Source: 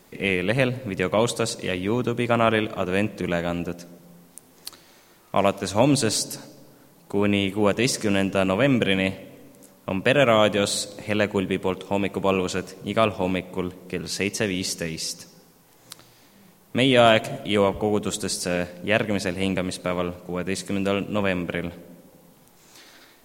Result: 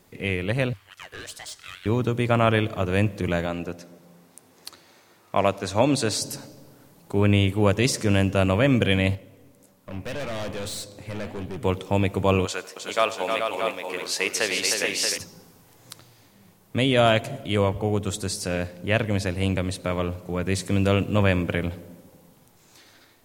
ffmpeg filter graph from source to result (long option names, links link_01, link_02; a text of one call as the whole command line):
ffmpeg -i in.wav -filter_complex "[0:a]asettb=1/sr,asplit=3[link_01][link_02][link_03];[link_01]atrim=end=0.734[link_04];[link_02]atrim=start=0.73:end=1.86,asetpts=PTS-STARTPTS,afade=type=in:duration=0.004:curve=qsin,afade=type=out:start_time=1.126:duration=0.004:curve=qsin,highpass=frequency=980:width=0.5412,highpass=frequency=980:width=1.3066,aeval=exprs='(tanh(22.4*val(0)+0.15)-tanh(0.15))/22.4':channel_layout=same,aeval=exprs='val(0)*sin(2*PI*620*n/s)':channel_layout=same[link_05];[link_03]atrim=start=1.856[link_06];[link_04][link_05]acrossfade=duration=0.004:curve1=hsin:curve2=qsin[link_07];[link_07][link_06]acrossfade=duration=0.004:curve1=qsin:curve2=hsin,asettb=1/sr,asplit=3[link_08][link_09][link_10];[link_08]atrim=end=3.464[link_11];[link_09]atrim=start=3.46:end=6.22,asetpts=PTS-STARTPTS,afade=type=in:duration=0.004:curve=qsin,afade=type=out:start_time=2.756:duration=0.004:curve=qsin,highpass=frequency=260:poles=1,highshelf=frequency=7100:gain=-7,bandreject=frequency=3100:width=25[link_12];[link_10]atrim=start=6.216[link_13];[link_11][link_12]acrossfade=duration=0.004:curve1=hsin:curve2=qsin[link_14];[link_14][link_13]acrossfade=duration=0.004:curve1=qsin:curve2=hsin,asettb=1/sr,asplit=3[link_15][link_16][link_17];[link_15]atrim=end=9.154[link_18];[link_16]atrim=start=9.15:end=11.63,asetpts=PTS-STARTPTS,afade=type=in:duration=0.004:curve=qsin,afade=type=out:start_time=2.476:duration=0.004:curve=qsin,flanger=delay=4.8:depth=9.8:regen=86:speed=1.7:shape=sinusoidal,aeval=exprs='(tanh(31.6*val(0)+0.5)-tanh(0.5))/31.6':channel_layout=same[link_19];[link_17]atrim=start=11.626[link_20];[link_18][link_19]acrossfade=duration=0.004:curve1=hsin:curve2=qsin[link_21];[link_21][link_20]acrossfade=duration=0.004:curve1=qsin:curve2=hsin,asettb=1/sr,asplit=3[link_22][link_23][link_24];[link_22]atrim=end=12.454[link_25];[link_23]atrim=start=12.45:end=15.18,asetpts=PTS-STARTPTS,afade=type=in:duration=0.004:curve=qsin,afade=type=out:start_time=2.726:duration=0.004:curve=qsin,highpass=570,aecho=1:1:94|310|429|629:0.106|0.501|0.473|0.422,atrim=end_sample=120393[link_26];[link_24]atrim=start=15.176[link_27];[link_25][link_26]acrossfade=duration=0.004:curve1=hsin:curve2=qsin[link_28];[link_28][link_27]acrossfade=duration=0.004:curve1=qsin:curve2=hsin,equalizer=frequency=98:width=2.8:gain=12.5,dynaudnorm=framelen=150:gausssize=17:maxgain=11.5dB,volume=-4.5dB" out.wav